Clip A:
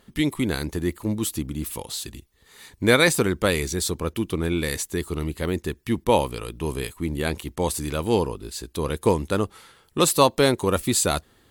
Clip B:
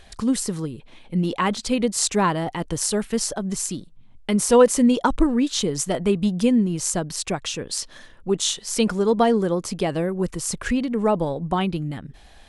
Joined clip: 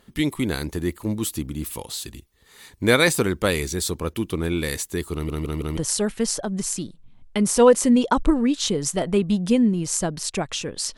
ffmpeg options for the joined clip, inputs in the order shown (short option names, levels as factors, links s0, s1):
-filter_complex "[0:a]apad=whole_dur=10.97,atrim=end=10.97,asplit=4[s0][s1][s2][s3];[s0]atrim=end=5.292[s4];[s1]atrim=start=5.128:end=5.292[s5];[s2]atrim=start=5.128:end=5.292[s6];[s3]atrim=start=5.128:end=5.292[s7];[1:a]atrim=start=2.698:end=7.9[s8];[s4][s5]acrossfade=d=0.004:c1=hsin:c2=hsin[s9];[s9][s6]acrossfade=d=0.004:c1=hsin:c2=hsin[s10];[s10][s7]acrossfade=d=0.004:c1=hsin:c2=hsin[s11];[s11][s8]acrossfade=d=0.004:c1=hsin:c2=hsin"